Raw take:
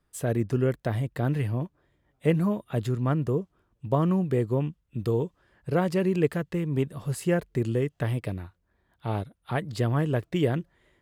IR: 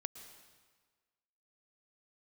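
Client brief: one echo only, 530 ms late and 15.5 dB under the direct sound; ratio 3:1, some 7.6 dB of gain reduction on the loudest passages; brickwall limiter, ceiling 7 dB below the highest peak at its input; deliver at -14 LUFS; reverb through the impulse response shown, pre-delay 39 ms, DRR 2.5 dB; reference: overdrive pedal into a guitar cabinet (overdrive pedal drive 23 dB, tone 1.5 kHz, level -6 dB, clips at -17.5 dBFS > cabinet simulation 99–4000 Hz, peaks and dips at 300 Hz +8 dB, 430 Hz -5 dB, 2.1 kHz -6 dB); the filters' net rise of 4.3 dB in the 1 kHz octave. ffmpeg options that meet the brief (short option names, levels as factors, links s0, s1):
-filter_complex "[0:a]equalizer=f=1000:t=o:g=6,acompressor=threshold=0.0447:ratio=3,alimiter=limit=0.075:level=0:latency=1,aecho=1:1:530:0.168,asplit=2[s0][s1];[1:a]atrim=start_sample=2205,adelay=39[s2];[s1][s2]afir=irnorm=-1:irlink=0,volume=1[s3];[s0][s3]amix=inputs=2:normalize=0,asplit=2[s4][s5];[s5]highpass=f=720:p=1,volume=14.1,asoftclip=type=tanh:threshold=0.133[s6];[s4][s6]amix=inputs=2:normalize=0,lowpass=f=1500:p=1,volume=0.501,highpass=99,equalizer=f=300:t=q:w=4:g=8,equalizer=f=430:t=q:w=4:g=-5,equalizer=f=2100:t=q:w=4:g=-6,lowpass=f=4000:w=0.5412,lowpass=f=4000:w=1.3066,volume=4.73"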